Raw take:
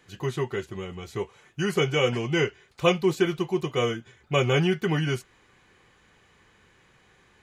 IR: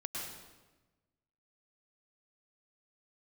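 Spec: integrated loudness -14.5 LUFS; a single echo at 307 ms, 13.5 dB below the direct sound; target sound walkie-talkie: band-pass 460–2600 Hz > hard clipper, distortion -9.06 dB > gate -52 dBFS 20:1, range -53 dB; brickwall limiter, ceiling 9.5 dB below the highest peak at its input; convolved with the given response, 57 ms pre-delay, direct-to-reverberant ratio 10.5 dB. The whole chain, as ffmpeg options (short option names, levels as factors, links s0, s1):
-filter_complex "[0:a]alimiter=limit=0.158:level=0:latency=1,aecho=1:1:307:0.211,asplit=2[s0][s1];[1:a]atrim=start_sample=2205,adelay=57[s2];[s1][s2]afir=irnorm=-1:irlink=0,volume=0.266[s3];[s0][s3]amix=inputs=2:normalize=0,highpass=460,lowpass=2600,asoftclip=type=hard:threshold=0.0335,agate=range=0.00224:threshold=0.00251:ratio=20,volume=11.2"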